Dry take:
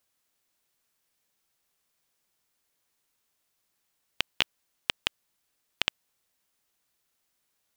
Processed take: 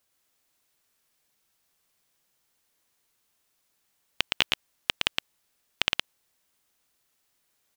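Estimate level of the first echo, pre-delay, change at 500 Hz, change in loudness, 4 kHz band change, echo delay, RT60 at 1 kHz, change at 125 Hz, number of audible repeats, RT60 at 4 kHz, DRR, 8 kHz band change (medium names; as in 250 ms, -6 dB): -3.5 dB, no reverb, +3.5 dB, +3.0 dB, +3.5 dB, 115 ms, no reverb, +3.5 dB, 1, no reverb, no reverb, +3.5 dB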